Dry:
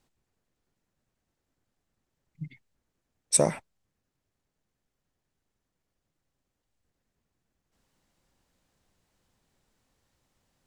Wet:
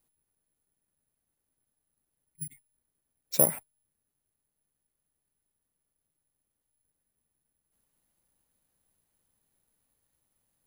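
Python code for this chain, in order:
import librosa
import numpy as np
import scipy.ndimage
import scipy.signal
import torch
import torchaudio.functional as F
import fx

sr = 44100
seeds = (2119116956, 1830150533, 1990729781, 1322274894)

p1 = fx.level_steps(x, sr, step_db=23)
p2 = x + (p1 * librosa.db_to_amplitude(0.0))
p3 = (np.kron(scipy.signal.resample_poly(p2, 1, 4), np.eye(4)[0]) * 4)[:len(p2)]
y = p3 * librosa.db_to_amplitude(-9.0)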